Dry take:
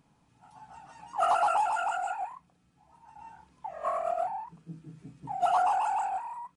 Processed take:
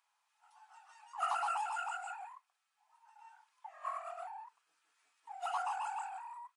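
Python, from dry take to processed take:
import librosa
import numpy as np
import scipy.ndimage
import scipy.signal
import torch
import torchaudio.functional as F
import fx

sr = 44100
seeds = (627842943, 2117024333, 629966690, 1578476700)

y = scipy.signal.sosfilt(scipy.signal.butter(4, 950.0, 'highpass', fs=sr, output='sos'), x)
y = y * 10.0 ** (-5.5 / 20.0)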